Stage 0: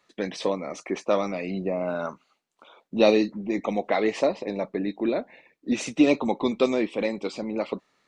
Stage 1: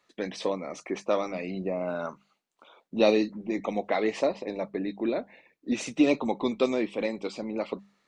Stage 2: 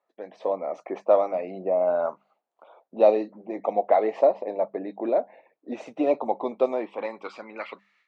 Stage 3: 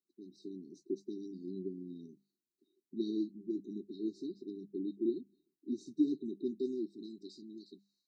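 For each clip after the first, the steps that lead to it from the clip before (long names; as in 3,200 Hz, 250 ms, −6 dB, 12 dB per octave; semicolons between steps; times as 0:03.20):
mains-hum notches 50/100/150/200 Hz; level −3 dB
automatic gain control gain up to 11 dB; band-pass filter sweep 680 Hz → 2,200 Hz, 0:06.63–0:07.92
linear-phase brick-wall band-stop 400–3,700 Hz; level −2.5 dB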